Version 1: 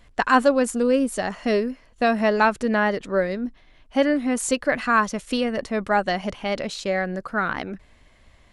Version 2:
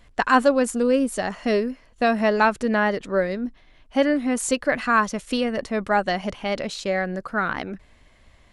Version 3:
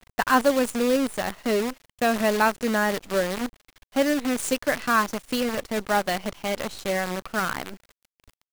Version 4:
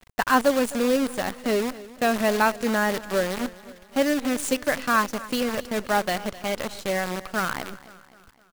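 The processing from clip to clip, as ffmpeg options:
-af anull
-af "acrusher=bits=5:dc=4:mix=0:aa=0.000001,volume=-2.5dB"
-af "aecho=1:1:259|518|777|1036:0.126|0.0642|0.0327|0.0167"

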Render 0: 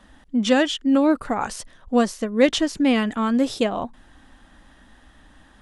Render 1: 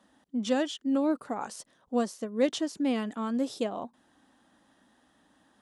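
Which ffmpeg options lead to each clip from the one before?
-af "highpass=190,equalizer=f=2.1k:w=0.86:g=-6.5,volume=-8dB"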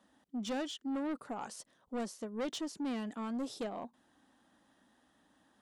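-af "asoftclip=type=tanh:threshold=-28dB,volume=-4.5dB"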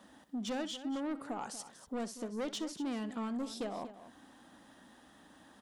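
-filter_complex "[0:a]acompressor=threshold=-55dB:ratio=2,asplit=2[a][b];[b]aecho=0:1:64|238:0.15|0.211[c];[a][c]amix=inputs=2:normalize=0,volume=10dB"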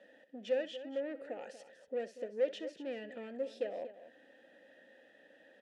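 -filter_complex "[0:a]asplit=3[a][b][c];[a]bandpass=f=530:t=q:w=8,volume=0dB[d];[b]bandpass=f=1.84k:t=q:w=8,volume=-6dB[e];[c]bandpass=f=2.48k:t=q:w=8,volume=-9dB[f];[d][e][f]amix=inputs=3:normalize=0,volume=10.5dB"

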